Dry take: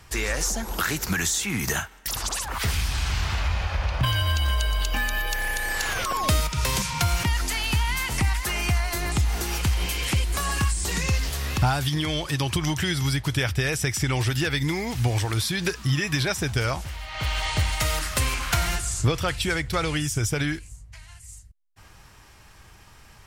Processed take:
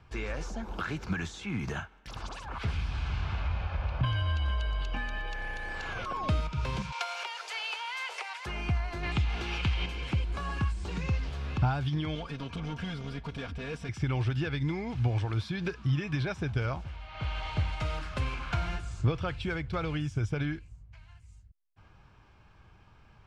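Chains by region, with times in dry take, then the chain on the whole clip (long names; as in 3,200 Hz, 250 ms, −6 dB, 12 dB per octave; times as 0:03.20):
0:06.92–0:08.46: Butterworth high-pass 430 Hz 72 dB per octave + high-shelf EQ 2,300 Hz +8.5 dB
0:09.03–0:09.86: parametric band 2,900 Hz +10.5 dB 1.8 octaves + notch filter 1,500 Hz, Q 26
0:12.15–0:13.89: gain into a clipping stage and back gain 27.5 dB + comb filter 4.3 ms, depth 79%
whole clip: low-pass filter 2,700 Hz 12 dB per octave; parametric band 140 Hz +4 dB 2.1 octaves; notch filter 1,900 Hz, Q 6.9; level −8 dB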